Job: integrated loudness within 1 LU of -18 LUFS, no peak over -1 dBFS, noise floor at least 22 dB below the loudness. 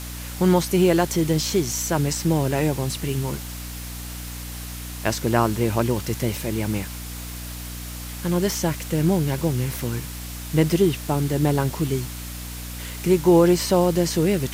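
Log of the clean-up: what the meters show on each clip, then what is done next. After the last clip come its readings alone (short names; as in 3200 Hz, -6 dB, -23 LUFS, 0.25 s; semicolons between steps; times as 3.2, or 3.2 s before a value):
hum 60 Hz; harmonics up to 300 Hz; hum level -32 dBFS; noise floor -34 dBFS; noise floor target -44 dBFS; loudness -22.0 LUFS; peak -6.0 dBFS; loudness target -18.0 LUFS
-> notches 60/120/180/240/300 Hz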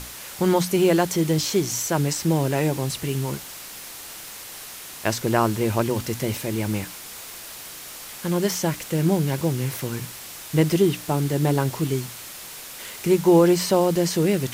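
hum none; noise floor -39 dBFS; noise floor target -45 dBFS
-> noise print and reduce 6 dB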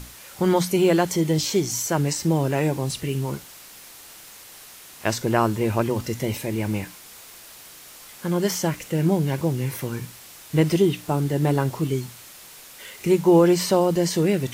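noise floor -45 dBFS; loudness -22.5 LUFS; peak -7.0 dBFS; loudness target -18.0 LUFS
-> gain +4.5 dB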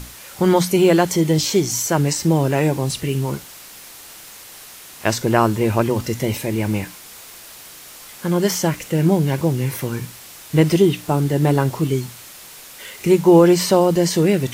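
loudness -18.0 LUFS; peak -2.5 dBFS; noise floor -40 dBFS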